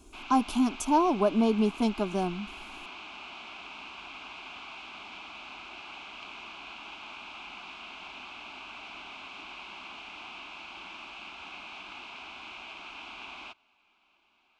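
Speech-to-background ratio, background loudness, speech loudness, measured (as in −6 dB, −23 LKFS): 15.5 dB, −42.5 LKFS, −27.0 LKFS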